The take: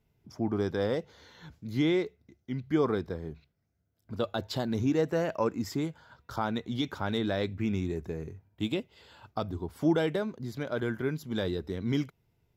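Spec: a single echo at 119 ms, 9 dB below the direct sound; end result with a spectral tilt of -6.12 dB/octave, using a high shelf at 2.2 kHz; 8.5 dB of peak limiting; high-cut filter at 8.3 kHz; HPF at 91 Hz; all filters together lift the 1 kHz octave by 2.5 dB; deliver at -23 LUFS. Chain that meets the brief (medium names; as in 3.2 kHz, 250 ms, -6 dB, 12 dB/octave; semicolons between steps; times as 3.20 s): high-pass 91 Hz; low-pass 8.3 kHz; peaking EQ 1 kHz +4 dB; treble shelf 2.2 kHz -4 dB; peak limiter -22 dBFS; delay 119 ms -9 dB; trim +10.5 dB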